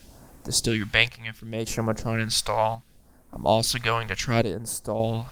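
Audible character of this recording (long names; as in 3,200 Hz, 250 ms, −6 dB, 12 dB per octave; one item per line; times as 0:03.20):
phaser sweep stages 2, 0.69 Hz, lowest notch 250–3,300 Hz
a quantiser's noise floor 10 bits, dither none
chopped level 0.6 Hz, depth 60%, duty 65%
Opus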